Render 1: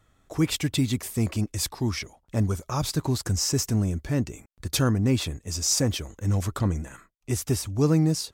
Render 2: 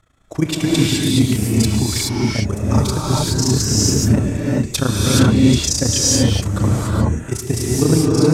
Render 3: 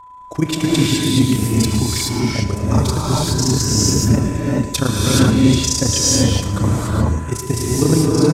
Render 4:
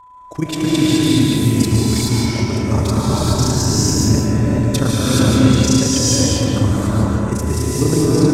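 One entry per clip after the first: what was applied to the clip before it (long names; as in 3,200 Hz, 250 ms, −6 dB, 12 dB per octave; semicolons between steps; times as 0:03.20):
amplitude modulation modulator 28 Hz, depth 90%; low-pass filter 12,000 Hz 12 dB per octave; reverb whose tail is shaped and stops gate 450 ms rising, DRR −5.5 dB; level +7.5 dB
steady tone 1,000 Hz −38 dBFS; repeating echo 113 ms, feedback 45%, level −12 dB
comb and all-pass reverb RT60 2.4 s, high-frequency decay 0.4×, pre-delay 110 ms, DRR −1.5 dB; level −3 dB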